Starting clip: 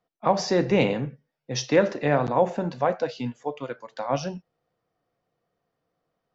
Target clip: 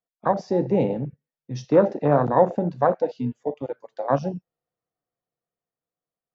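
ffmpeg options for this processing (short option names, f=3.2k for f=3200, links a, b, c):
-af "dynaudnorm=f=320:g=9:m=5dB,afwtdn=0.0891"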